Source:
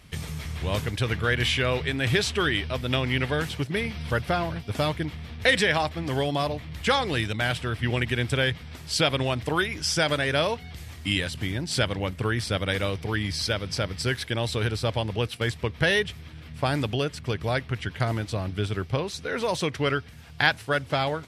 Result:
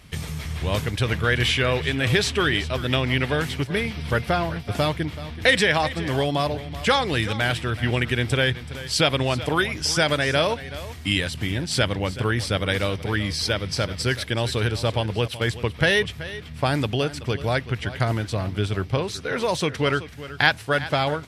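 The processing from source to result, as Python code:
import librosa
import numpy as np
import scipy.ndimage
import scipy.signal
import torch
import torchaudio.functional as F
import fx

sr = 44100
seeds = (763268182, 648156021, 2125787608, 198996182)

y = x + 10.0 ** (-15.0 / 20.0) * np.pad(x, (int(379 * sr / 1000.0), 0))[:len(x)]
y = F.gain(torch.from_numpy(y), 3.0).numpy()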